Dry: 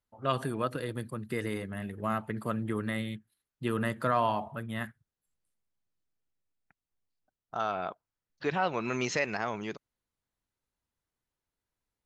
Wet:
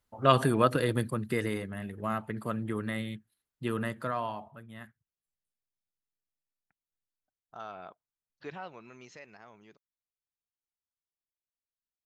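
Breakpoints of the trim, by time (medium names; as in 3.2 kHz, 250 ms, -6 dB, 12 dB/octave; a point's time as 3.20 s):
0.97 s +7.5 dB
1.76 s -1 dB
3.72 s -1 dB
4.61 s -11 dB
8.50 s -11 dB
8.95 s -20 dB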